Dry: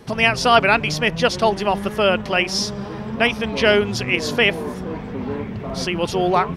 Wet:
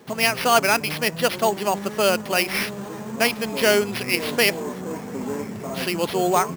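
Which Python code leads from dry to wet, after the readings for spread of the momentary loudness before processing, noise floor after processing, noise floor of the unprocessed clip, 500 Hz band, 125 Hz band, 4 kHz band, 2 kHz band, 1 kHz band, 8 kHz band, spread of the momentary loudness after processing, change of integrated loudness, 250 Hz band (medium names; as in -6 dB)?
13 LU, -35 dBFS, -31 dBFS, -2.5 dB, -6.5 dB, -3.0 dB, -3.5 dB, -3.0 dB, +4.0 dB, 12 LU, -2.5 dB, -3.5 dB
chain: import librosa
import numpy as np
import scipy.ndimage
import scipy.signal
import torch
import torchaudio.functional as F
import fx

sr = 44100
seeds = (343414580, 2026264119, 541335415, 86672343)

p1 = scipy.signal.sosfilt(scipy.signal.butter(2, 170.0, 'highpass', fs=sr, output='sos'), x)
p2 = fx.rider(p1, sr, range_db=5, speed_s=2.0)
p3 = p1 + F.gain(torch.from_numpy(p2), -1.5).numpy()
p4 = fx.sample_hold(p3, sr, seeds[0], rate_hz=7500.0, jitter_pct=0)
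y = F.gain(torch.from_numpy(p4), -8.0).numpy()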